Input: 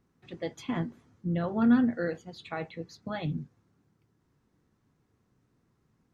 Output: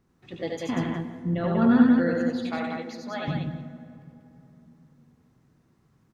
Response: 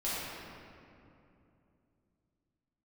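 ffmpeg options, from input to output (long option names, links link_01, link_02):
-filter_complex "[0:a]asettb=1/sr,asplit=3[link_01][link_02][link_03];[link_01]atrim=end=2.584[link_04];[link_02]atrim=start=2.58:end=3.28,asetpts=PTS-STARTPTS,afade=type=in:duration=0.004:curve=qsin,afade=type=out:start_time=0.696:duration=0.004:curve=qsin,highpass=440[link_05];[link_03]atrim=start=3.276[link_06];[link_04][link_05]acrossfade=duration=0.004:curve1=hsin:curve2=qsin[link_07];[link_07][link_06]acrossfade=duration=0.004:curve1=qsin:curve2=hsin,aecho=1:1:75|91|190|361:0.447|0.631|0.668|0.119,asplit=2[link_08][link_09];[1:a]atrim=start_sample=2205,asetrate=34398,aresample=44100[link_10];[link_09][link_10]afir=irnorm=-1:irlink=0,volume=-20.5dB[link_11];[link_08][link_11]amix=inputs=2:normalize=0,volume=2dB"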